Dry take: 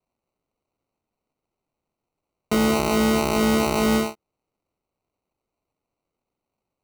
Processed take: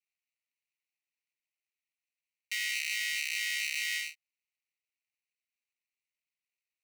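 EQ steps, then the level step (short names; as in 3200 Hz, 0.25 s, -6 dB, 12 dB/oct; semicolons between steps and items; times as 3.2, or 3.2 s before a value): rippled Chebyshev high-pass 1800 Hz, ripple 3 dB; high shelf 3200 Hz -12 dB; +5.0 dB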